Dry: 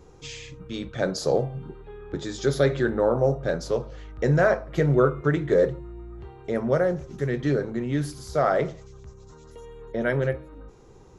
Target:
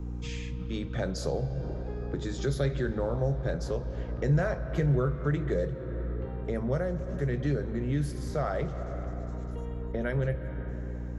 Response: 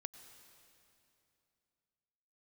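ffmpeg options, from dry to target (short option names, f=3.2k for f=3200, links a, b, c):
-filter_complex "[0:a]asplit=2[a][b];[1:a]atrim=start_sample=2205,asetrate=32634,aresample=44100,lowpass=3.1k[c];[b][c]afir=irnorm=-1:irlink=0,volume=2dB[d];[a][d]amix=inputs=2:normalize=0,aeval=exprs='val(0)+0.0355*(sin(2*PI*60*n/s)+sin(2*PI*2*60*n/s)/2+sin(2*PI*3*60*n/s)/3+sin(2*PI*4*60*n/s)/4+sin(2*PI*5*60*n/s)/5)':c=same,acrossover=split=160|3000[e][f][g];[f]acompressor=threshold=-28dB:ratio=2.5[h];[e][h][g]amix=inputs=3:normalize=0,volume=-5.5dB"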